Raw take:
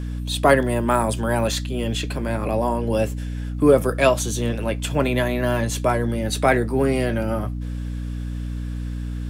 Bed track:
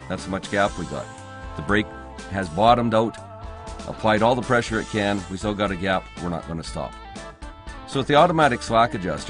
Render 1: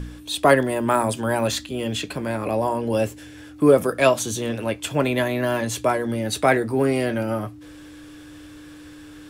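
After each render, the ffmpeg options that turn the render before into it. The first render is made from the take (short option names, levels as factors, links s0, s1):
-af "bandreject=f=60:t=h:w=4,bandreject=f=120:t=h:w=4,bandreject=f=180:t=h:w=4,bandreject=f=240:t=h:w=4"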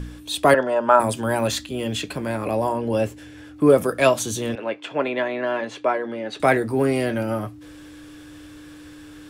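-filter_complex "[0:a]asettb=1/sr,asplit=3[s0][s1][s2];[s0]atrim=end=0.544[s3];[s1]atrim=start=0.54:end=1,asetpts=PTS-STARTPTS,afade=t=in:d=0.004:c=qsin,afade=t=out:st=0.456:d=0.004:c=qsin,highpass=260,equalizer=f=320:t=q:w=4:g=-9,equalizer=f=590:t=q:w=4:g=7,equalizer=f=900:t=q:w=4:g=6,equalizer=f=1400:t=q:w=4:g=8,equalizer=f=2100:t=q:w=4:g=-8,equalizer=f=4000:t=q:w=4:g=-9,lowpass=f=5800:w=0.5412,lowpass=f=5800:w=1.3066[s4];[s2]atrim=start=0.996[s5];[s3][s4]acrossfade=d=0.004:c1=hsin:c2=qsin[s6];[s6][s5]acrossfade=d=0.004:c1=qsin:c2=hsin,asettb=1/sr,asplit=3[s7][s8][s9];[s7]atrim=end=2.724[s10];[s8]atrim=start=2.72:end=3.7,asetpts=PTS-STARTPTS,afade=t=in:d=0.004:c=qsin,afade=t=out:st=0.976:d=0.004:c=qsin,highshelf=f=4900:g=-6.5[s11];[s9]atrim=start=3.696[s12];[s10][s11]acrossfade=d=0.004:c1=hsin:c2=qsin[s13];[s13][s12]acrossfade=d=0.004:c1=qsin:c2=hsin,asettb=1/sr,asplit=3[s14][s15][s16];[s14]atrim=end=4.554[s17];[s15]atrim=start=4.55:end=6.4,asetpts=PTS-STARTPTS,afade=t=in:d=0.004:c=qsin,afade=t=out:st=1.846:d=0.004:c=qsin,highpass=330,lowpass=2800[s18];[s16]atrim=start=6.396[s19];[s17][s18]acrossfade=d=0.004:c1=hsin:c2=qsin[s20];[s20][s19]acrossfade=d=0.004:c1=qsin:c2=hsin"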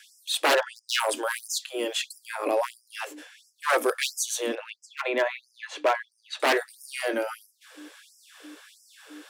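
-af "aeval=exprs='0.188*(abs(mod(val(0)/0.188+3,4)-2)-1)':c=same,afftfilt=real='re*gte(b*sr/1024,250*pow(5000/250,0.5+0.5*sin(2*PI*1.5*pts/sr)))':imag='im*gte(b*sr/1024,250*pow(5000/250,0.5+0.5*sin(2*PI*1.5*pts/sr)))':win_size=1024:overlap=0.75"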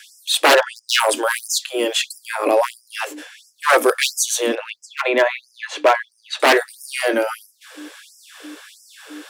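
-af "volume=2.82"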